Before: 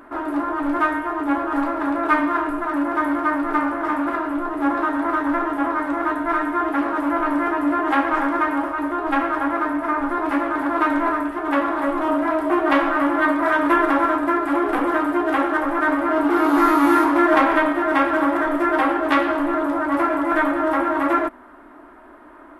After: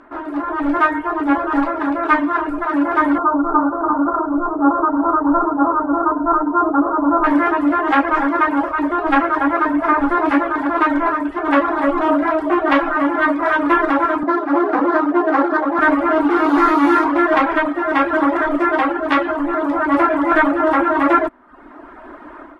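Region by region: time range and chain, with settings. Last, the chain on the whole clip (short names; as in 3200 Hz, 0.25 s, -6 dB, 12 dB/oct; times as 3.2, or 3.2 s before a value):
3.18–7.24 Chebyshev low-pass 1400 Hz, order 6 + notches 60/120/180/240/300/360/420/480/540/600 Hz
14.23–15.79 median filter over 15 samples + HPF 46 Hz + three-band isolator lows -21 dB, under 160 Hz, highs -18 dB, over 2200 Hz
whole clip: reverb removal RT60 0.68 s; LPF 5800 Hz 12 dB/oct; AGC; gain -1 dB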